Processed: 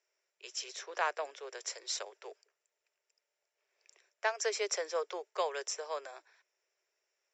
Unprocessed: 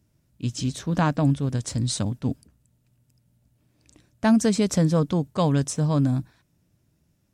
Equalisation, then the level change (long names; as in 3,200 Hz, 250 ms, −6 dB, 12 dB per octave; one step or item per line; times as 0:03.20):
Butterworth high-pass 380 Hz 96 dB per octave
Chebyshev low-pass with heavy ripple 7,500 Hz, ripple 9 dB
0.0 dB